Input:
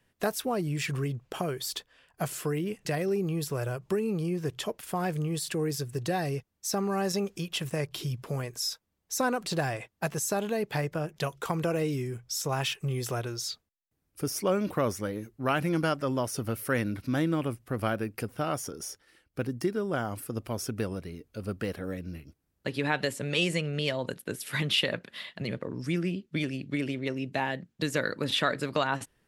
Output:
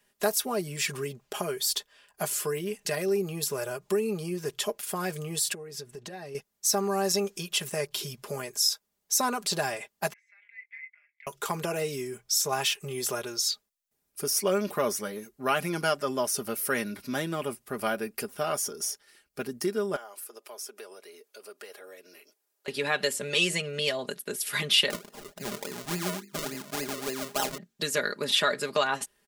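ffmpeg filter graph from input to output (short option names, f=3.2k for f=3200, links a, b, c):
-filter_complex "[0:a]asettb=1/sr,asplit=3[a][b][c];[a]atrim=end=5.534[d];[b]atrim=start=5.53:end=6.35,asetpts=PTS-STARTPTS,afade=t=in:d=0.004:c=qsin,afade=t=out:st=0.816:d=0.004:c=qsin,lowpass=f=2.5k:p=1,acompressor=threshold=-36dB:ratio=10:attack=3.2:release=140:knee=1:detection=peak[e];[c]atrim=start=6.346[f];[d][e]acrossfade=d=0.004:c1=hsin:c2=qsin[g];[g][f]acrossfade=d=0.004:c1=qsin:c2=hsin,asettb=1/sr,asplit=3[h][i][j];[h]atrim=end=10.134[k];[i]atrim=start=10.13:end=11.27,asetpts=PTS-STARTPTS,afade=t=in:d=0.004:c=qsin,afade=t=out:st=1.136:d=0.004:c=qsin,asuperpass=centerf=2100:order=4:qfactor=7.9,asplit=2[l][m];[m]adelay=21,volume=-12.5dB[n];[l][n]amix=inputs=2:normalize=0,atrim=end_sample=50274[o];[j]atrim=start=11.266[p];[k][o]acrossfade=d=0.004:c1=hsin:c2=qsin[q];[q][p]acrossfade=d=0.004:c1=qsin:c2=hsin,asettb=1/sr,asplit=3[r][s][t];[r]atrim=end=19.964[u];[s]atrim=start=19.96:end=22.68,asetpts=PTS-STARTPTS,afade=t=in:d=0.004:c=qsin,afade=t=out:st=2.716:d=0.004:c=qsin,highpass=f=380:w=0.5412,highpass=f=380:w=1.3066,acompressor=threshold=-50dB:ratio=2:attack=3.2:release=140:knee=1:detection=peak[v];[t]atrim=start=22.676[w];[u][v]acrossfade=d=0.004:c1=hsin:c2=qsin[x];[x][w]acrossfade=d=0.004:c1=qsin:c2=hsin,asettb=1/sr,asplit=3[y][z][aa];[y]atrim=end=24.904[ab];[z]atrim=start=24.9:end=27.58,asetpts=PTS-STARTPTS,afade=t=in:d=0.004:c=qsin,afade=t=out:st=2.676:d=0.004:c=qsin,equalizer=f=2k:t=o:w=1:g=-4,bandreject=f=50:t=h:w=6,bandreject=f=100:t=h:w=6,bandreject=f=150:t=h:w=6,bandreject=f=200:t=h:w=6,bandreject=f=250:t=h:w=6,bandreject=f=300:t=h:w=6,bandreject=f=350:t=h:w=6,bandreject=f=400:t=h:w=6,bandreject=f=450:t=h:w=6,bandreject=f=500:t=h:w=6,acrusher=samples=37:mix=1:aa=0.000001:lfo=1:lforange=37:lforate=3.5[ac];[aa]atrim=start=27.576[ad];[ab][ac]acrossfade=d=0.004:c1=hsin:c2=qsin[ae];[ae][ad]acrossfade=d=0.004:c1=qsin:c2=hsin,bass=f=250:g=-10,treble=f=4k:g=7,aecho=1:1:4.9:0.69"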